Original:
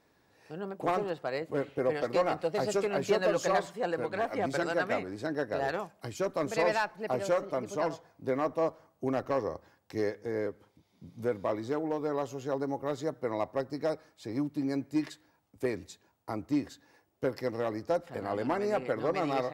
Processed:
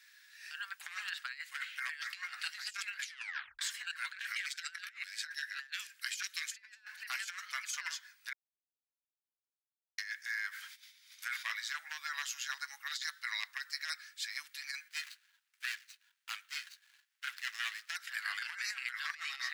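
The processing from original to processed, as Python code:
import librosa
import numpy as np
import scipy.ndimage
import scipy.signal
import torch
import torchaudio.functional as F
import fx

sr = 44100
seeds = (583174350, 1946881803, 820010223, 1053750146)

y = fx.filter_lfo_highpass(x, sr, shape='saw_down', hz=fx.line((4.17, 6.2), (6.65, 1.3)), low_hz=760.0, high_hz=3600.0, q=1.0, at=(4.17, 6.65), fade=0.02)
y = fx.sustainer(y, sr, db_per_s=93.0, at=(10.49, 11.52))
y = fx.peak_eq(y, sr, hz=4300.0, db=6.5, octaves=0.77, at=(12.87, 13.48))
y = fx.median_filter(y, sr, points=25, at=(14.88, 17.96))
y = fx.edit(y, sr, fx.tape_stop(start_s=2.99, length_s=0.6),
    fx.silence(start_s=8.33, length_s=1.65), tone=tone)
y = scipy.signal.sosfilt(scipy.signal.ellip(4, 1.0, 70, 1600.0, 'highpass', fs=sr, output='sos'), y)
y = fx.over_compress(y, sr, threshold_db=-49.0, ratio=-0.5)
y = F.gain(torch.from_numpy(y), 9.0).numpy()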